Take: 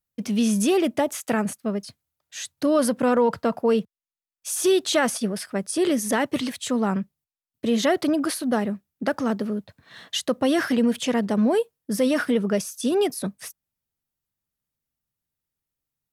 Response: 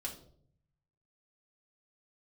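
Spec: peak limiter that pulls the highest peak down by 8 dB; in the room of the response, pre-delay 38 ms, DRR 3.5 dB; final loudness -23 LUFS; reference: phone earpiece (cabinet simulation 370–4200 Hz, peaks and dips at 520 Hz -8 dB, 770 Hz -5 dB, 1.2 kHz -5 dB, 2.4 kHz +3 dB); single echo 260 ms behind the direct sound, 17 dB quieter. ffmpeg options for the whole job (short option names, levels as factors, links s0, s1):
-filter_complex "[0:a]alimiter=limit=0.141:level=0:latency=1,aecho=1:1:260:0.141,asplit=2[s0][s1];[1:a]atrim=start_sample=2205,adelay=38[s2];[s1][s2]afir=irnorm=-1:irlink=0,volume=0.75[s3];[s0][s3]amix=inputs=2:normalize=0,highpass=370,equalizer=f=520:t=q:w=4:g=-8,equalizer=f=770:t=q:w=4:g=-5,equalizer=f=1200:t=q:w=4:g=-5,equalizer=f=2400:t=q:w=4:g=3,lowpass=f=4200:w=0.5412,lowpass=f=4200:w=1.3066,volume=2.37"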